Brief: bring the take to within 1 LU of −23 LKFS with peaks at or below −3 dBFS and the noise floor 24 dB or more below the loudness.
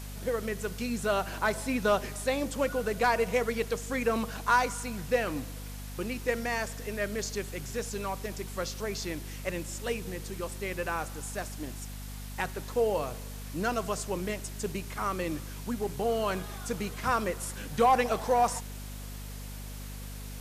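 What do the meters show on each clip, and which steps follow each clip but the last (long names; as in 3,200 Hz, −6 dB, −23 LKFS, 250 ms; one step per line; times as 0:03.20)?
mains hum 50 Hz; hum harmonics up to 250 Hz; level of the hum −39 dBFS; background noise floor −41 dBFS; target noise floor −56 dBFS; integrated loudness −31.5 LKFS; sample peak −14.0 dBFS; target loudness −23.0 LKFS
→ mains-hum notches 50/100/150/200/250 Hz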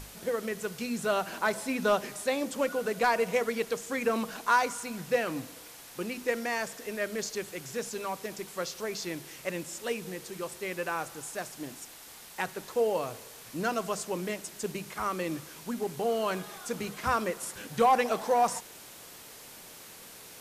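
mains hum none found; background noise floor −49 dBFS; target noise floor −56 dBFS
→ broadband denoise 7 dB, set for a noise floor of −49 dBFS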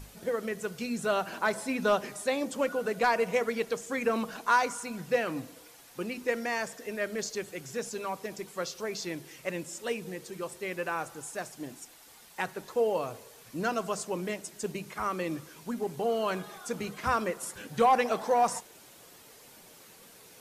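background noise floor −54 dBFS; target noise floor −56 dBFS
→ broadband denoise 6 dB, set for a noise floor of −54 dBFS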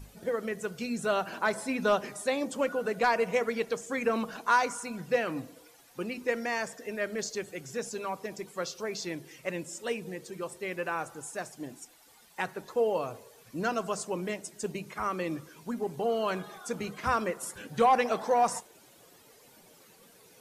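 background noise floor −58 dBFS; integrated loudness −31.5 LKFS; sample peak −14.5 dBFS; target loudness −23.0 LKFS
→ level +8.5 dB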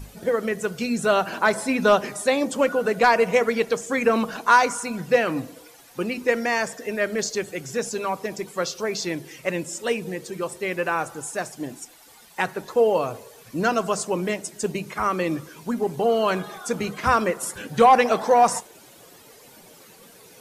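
integrated loudness −23.0 LKFS; sample peak −6.0 dBFS; background noise floor −50 dBFS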